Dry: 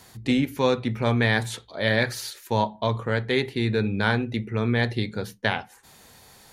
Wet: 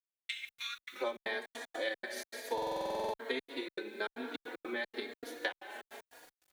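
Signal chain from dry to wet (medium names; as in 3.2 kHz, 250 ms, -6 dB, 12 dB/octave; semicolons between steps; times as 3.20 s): steep high-pass 1.3 kHz 72 dB/octave, from 0.92 s 260 Hz; plate-style reverb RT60 2.5 s, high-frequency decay 0.8×, DRR 5 dB; transient shaper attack +7 dB, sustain -4 dB; trance gate ".x.xx.xx.xxx.xx" 155 bpm -60 dB; expander -40 dBFS; bit crusher 9-bit; compression 2:1, threshold -35 dBFS, peak gain reduction 12 dB; buffer glitch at 2.53 s, samples 2048, times 12; endless flanger 3.6 ms +1.1 Hz; trim -2.5 dB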